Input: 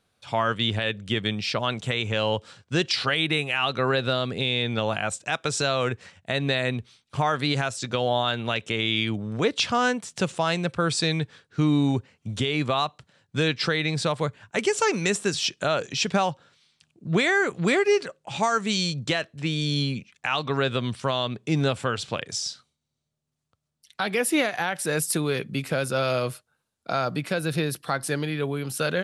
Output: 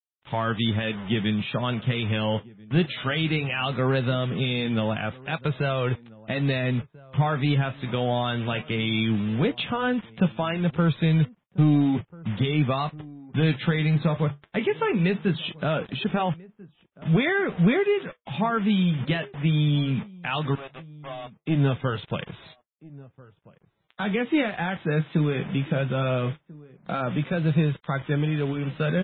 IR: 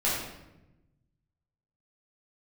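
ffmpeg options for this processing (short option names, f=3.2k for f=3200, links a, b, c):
-filter_complex "[0:a]asplit=3[a][b][c];[a]afade=t=out:st=17.92:d=0.02[d];[b]highpass=55,afade=t=in:st=17.92:d=0.02,afade=t=out:st=18.35:d=0.02[e];[c]afade=t=in:st=18.35:d=0.02[f];[d][e][f]amix=inputs=3:normalize=0,equalizer=f=170:w=0.97:g=11.5,asettb=1/sr,asplit=3[g][h][i];[g]atrim=end=28.084[j];[h]atrim=start=28.08:end=28.55,asetpts=PTS-STARTPTS,afade=t=in:d=0.004:c=qsin,afade=t=out:st=0.466:d=0.004:c=qsin,bandreject=f=60:t=h:w=6,bandreject=f=120:t=h:w=6,bandreject=f=180:t=h:w=6[k];[i]atrim=start=28.546[l];[j][k]acrossfade=d=0.004:c1=hsin:c2=qsin[m];[m][l]acrossfade=d=0.004:c1=qsin:c2=hsin,acontrast=51,asettb=1/sr,asplit=3[n][o][p];[n]atrim=end=20.554[q];[o]atrim=start=20.55:end=21.41,asetpts=PTS-STARTPTS,afade=t=in:d=0.004:c=qsin,afade=t=out:st=0.856:d=0.004:c=qsin,asplit=3[r][s][t];[r]bandpass=f=730:t=q:w=8,volume=0dB[u];[s]bandpass=f=1.09k:t=q:w=8,volume=-6dB[v];[t]bandpass=f=2.44k:t=q:w=8,volume=-9dB[w];[u][v][w]amix=inputs=3:normalize=0[x];[p]atrim=start=21.406[y];[q][x]acrossfade=d=0.004:c1=hsin:c2=qsin[z];[z][y]acrossfade=d=0.004:c1=qsin:c2=hsin,acrusher=bits=4:mix=0:aa=0.000001,flanger=delay=1.9:depth=9.2:regen=-67:speed=0.18:shape=sinusoidal,asplit=2[aa][ab];[ab]adelay=1341,volume=-22dB,highshelf=f=4k:g=-30.2[ac];[aa][ac]amix=inputs=2:normalize=0,aresample=8000,aresample=44100,volume=-4.5dB" -ar 16000 -c:a libmp3lame -b:a 16k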